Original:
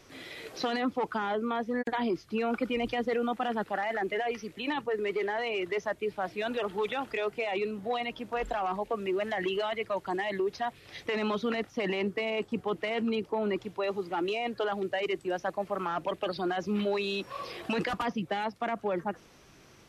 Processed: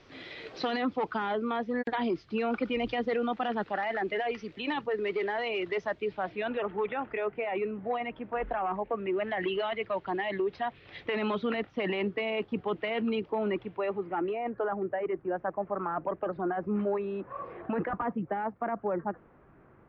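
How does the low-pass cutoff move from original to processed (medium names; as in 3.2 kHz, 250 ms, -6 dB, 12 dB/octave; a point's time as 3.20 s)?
low-pass 24 dB/octave
6.04 s 4.6 kHz
6.74 s 2.3 kHz
8.92 s 2.3 kHz
9.50 s 3.5 kHz
13.33 s 3.5 kHz
14.60 s 1.6 kHz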